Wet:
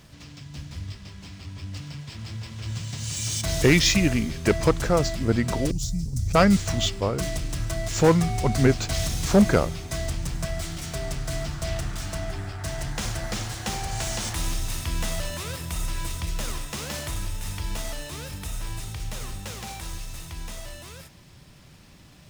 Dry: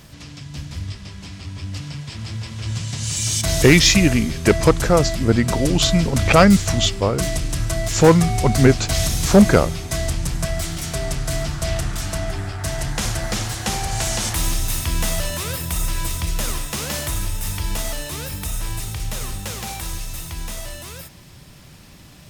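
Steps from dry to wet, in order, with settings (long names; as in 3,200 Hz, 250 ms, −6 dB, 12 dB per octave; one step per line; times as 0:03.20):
running median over 3 samples
0:05.71–0:06.35: drawn EQ curve 120 Hz 0 dB, 620 Hz −28 dB, 3,000 Hz −24 dB, 5,700 Hz −3 dB
level −6 dB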